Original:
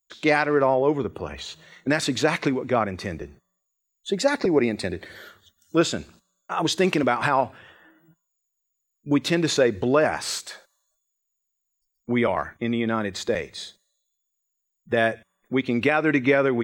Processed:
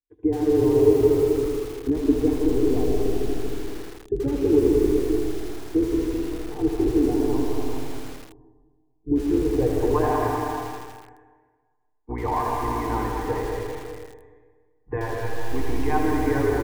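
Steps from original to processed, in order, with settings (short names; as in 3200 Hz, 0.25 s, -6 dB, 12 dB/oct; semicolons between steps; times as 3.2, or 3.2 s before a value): octaver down 2 oct, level +3 dB; resonant high shelf 6200 Hz +9.5 dB, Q 1.5; fixed phaser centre 880 Hz, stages 8; limiter -16 dBFS, peak gain reduction 8.5 dB; bell 140 Hz +5 dB 1 oct; comb 6.7 ms, depth 71%; tapped delay 76/78/198/319/371/394 ms -9/-14/-8/-20/-13.5/-9.5 dB; low-pass sweep 400 Hz -> 1100 Hz, 9.3–9.98; short-mantissa float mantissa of 8-bit; digital reverb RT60 1.5 s, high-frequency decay 0.8×, pre-delay 90 ms, DRR 1.5 dB; lo-fi delay 81 ms, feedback 80%, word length 5-bit, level -10 dB; gain -3.5 dB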